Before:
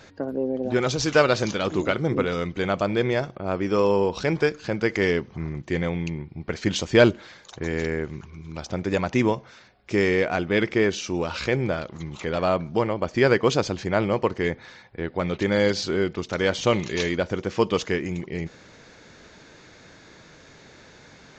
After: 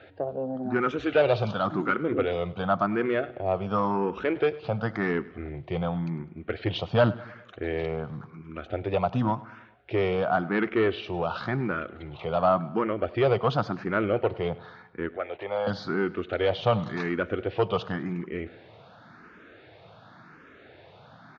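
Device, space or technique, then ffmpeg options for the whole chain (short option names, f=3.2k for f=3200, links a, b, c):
barber-pole phaser into a guitar amplifier: -filter_complex "[0:a]asettb=1/sr,asplit=3[a][b][c];[a]atrim=end=15.164[d];[b]atrim=start=15.16:end=15.67,asetpts=PTS-STARTPTS,afade=t=in:d=0.004:c=qsin,afade=t=out:st=0.506:d=0.004:c=qsin,acrossover=split=510 2400:gain=0.112 1 0.178[e][f][g];[e][f][g]amix=inputs=3:normalize=0[h];[c]atrim=start=15.666[i];[d][h]acrossfade=d=0.004:c1=hsin:c2=qsin[j];[j][i]acrossfade=d=0.004:c1=qsin:c2=hsin,asplit=2[k][l];[l]afreqshift=0.92[m];[k][m]amix=inputs=2:normalize=1,asoftclip=type=tanh:threshold=-16dB,highpass=84,equalizer=f=110:t=q:w=4:g=5,equalizer=f=710:t=q:w=4:g=7,equalizer=f=1.3k:t=q:w=4:g=7,equalizer=f=2.1k:t=q:w=4:g=-4,lowpass=f=3.4k:w=0.5412,lowpass=f=3.4k:w=1.3066,aecho=1:1:102|204|306|408:0.0944|0.051|0.0275|0.0149"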